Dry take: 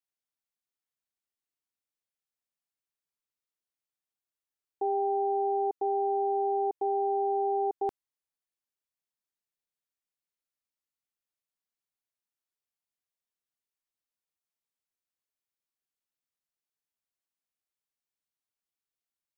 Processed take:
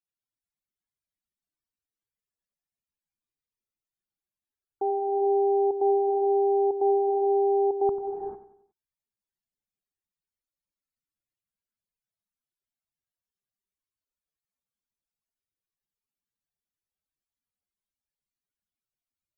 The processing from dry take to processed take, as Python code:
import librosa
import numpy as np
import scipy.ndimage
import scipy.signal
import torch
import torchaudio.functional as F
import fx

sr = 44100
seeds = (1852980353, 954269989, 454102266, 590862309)

y = fx.low_shelf(x, sr, hz=190.0, db=6.5)
y = fx.echo_feedback(y, sr, ms=92, feedback_pct=43, wet_db=-12.0)
y = fx.rev_gated(y, sr, seeds[0], gate_ms=470, shape='rising', drr_db=3.5)
y = fx.spec_topn(y, sr, count=64)
y = y * 10.0 ** (1.5 / 20.0)